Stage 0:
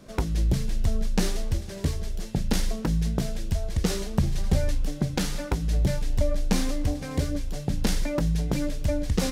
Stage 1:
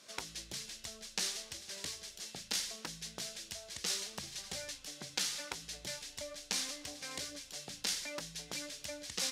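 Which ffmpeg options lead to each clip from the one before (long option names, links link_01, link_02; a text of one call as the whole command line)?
ffmpeg -i in.wav -filter_complex "[0:a]asplit=2[link_01][link_02];[link_02]acompressor=threshold=-31dB:ratio=6,volume=0dB[link_03];[link_01][link_03]amix=inputs=2:normalize=0,bandpass=frequency=5400:width_type=q:width=0.68:csg=0,volume=-2.5dB" out.wav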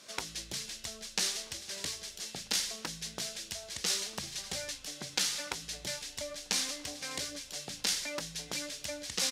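ffmpeg -i in.wav -filter_complex "[0:a]asplit=2[link_01][link_02];[link_02]adelay=1283,volume=-23dB,highshelf=frequency=4000:gain=-28.9[link_03];[link_01][link_03]amix=inputs=2:normalize=0,volume=4.5dB" out.wav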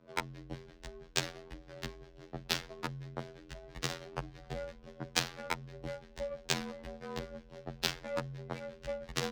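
ffmpeg -i in.wav -af "adynamicsmooth=sensitivity=3:basefreq=560,afftfilt=real='hypot(re,im)*cos(PI*b)':imag='0':win_size=2048:overlap=0.75,afreqshift=-36,volume=8.5dB" out.wav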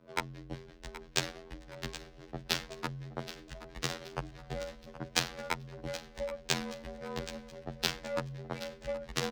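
ffmpeg -i in.wav -af "aecho=1:1:774|1548|2322|3096:0.2|0.0898|0.0404|0.0182,volume=1.5dB" out.wav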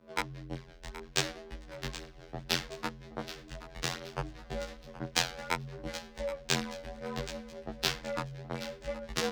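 ffmpeg -i in.wav -af "flanger=delay=18:depth=6.5:speed=0.66,volume=4.5dB" out.wav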